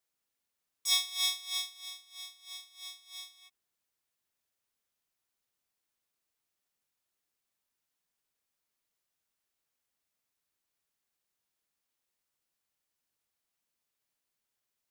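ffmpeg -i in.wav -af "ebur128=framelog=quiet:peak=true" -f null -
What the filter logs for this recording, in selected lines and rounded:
Integrated loudness:
  I:         -31.8 LUFS
  Threshold: -44.4 LUFS
Loudness range:
  LRA:        20.3 LU
  Threshold: -58.9 LUFS
  LRA low:   -54.6 LUFS
  LRA high:  -34.4 LUFS
True peak:
  Peak:      -11.9 dBFS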